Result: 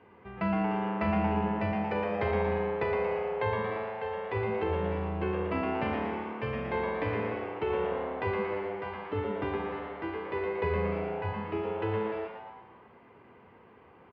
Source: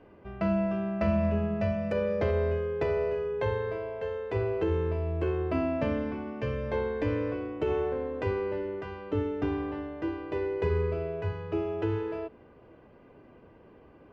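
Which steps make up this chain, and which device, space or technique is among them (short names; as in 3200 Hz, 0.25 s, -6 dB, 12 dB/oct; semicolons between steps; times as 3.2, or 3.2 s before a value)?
frequency-shifting delay pedal into a guitar cabinet (frequency-shifting echo 0.115 s, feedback 49%, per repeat +110 Hz, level -6 dB; speaker cabinet 96–4300 Hz, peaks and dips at 150 Hz -5 dB, 300 Hz -8 dB, 600 Hz -9 dB, 940 Hz +6 dB, 2100 Hz +5 dB)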